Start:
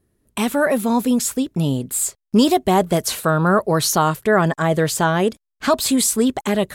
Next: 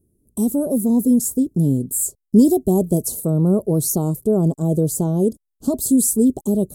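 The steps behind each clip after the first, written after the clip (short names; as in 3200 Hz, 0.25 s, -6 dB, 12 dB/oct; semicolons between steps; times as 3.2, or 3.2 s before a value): Chebyshev band-stop 350–9600 Hz, order 2; gain +3 dB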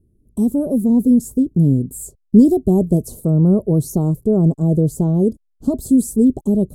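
tilt -2.5 dB/oct; gain -2.5 dB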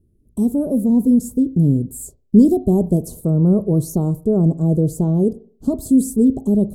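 reverb RT60 0.50 s, pre-delay 34 ms, DRR 15.5 dB; gain -1 dB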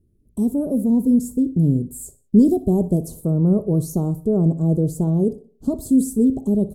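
feedback echo 61 ms, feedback 32%, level -17.5 dB; gain -2.5 dB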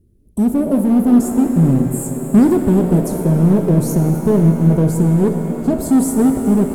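in parallel at +2.5 dB: hard clip -19 dBFS, distortion -8 dB; on the sum: shimmer reverb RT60 3.7 s, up +7 st, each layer -8 dB, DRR 5.5 dB; gain -1 dB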